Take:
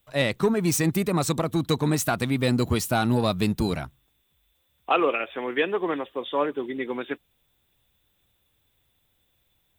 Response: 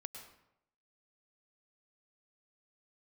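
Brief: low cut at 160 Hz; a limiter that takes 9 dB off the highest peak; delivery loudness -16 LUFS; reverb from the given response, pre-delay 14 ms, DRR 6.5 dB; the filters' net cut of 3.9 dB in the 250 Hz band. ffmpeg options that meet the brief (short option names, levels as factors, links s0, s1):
-filter_complex "[0:a]highpass=160,equalizer=f=250:t=o:g=-4,alimiter=limit=0.126:level=0:latency=1,asplit=2[s0][s1];[1:a]atrim=start_sample=2205,adelay=14[s2];[s1][s2]afir=irnorm=-1:irlink=0,volume=0.708[s3];[s0][s3]amix=inputs=2:normalize=0,volume=4.22"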